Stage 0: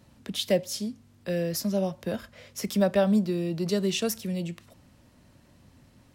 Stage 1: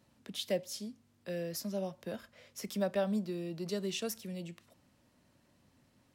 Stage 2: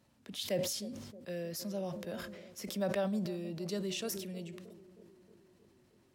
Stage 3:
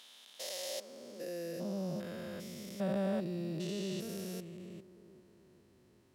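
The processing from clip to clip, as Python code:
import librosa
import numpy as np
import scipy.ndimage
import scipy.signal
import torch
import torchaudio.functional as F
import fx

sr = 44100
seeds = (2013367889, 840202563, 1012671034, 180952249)

y1 = fx.low_shelf(x, sr, hz=110.0, db=-10.5)
y1 = y1 * 10.0 ** (-8.5 / 20.0)
y2 = fx.echo_banded(y1, sr, ms=313, feedback_pct=69, hz=320.0, wet_db=-14)
y2 = fx.sustainer(y2, sr, db_per_s=42.0)
y2 = y2 * 10.0 ** (-2.0 / 20.0)
y3 = fx.spec_steps(y2, sr, hold_ms=400)
y3 = fx.filter_sweep_highpass(y3, sr, from_hz=820.0, to_hz=61.0, start_s=0.59, end_s=2.56, q=1.3)
y3 = y3 * 10.0 ** (1.5 / 20.0)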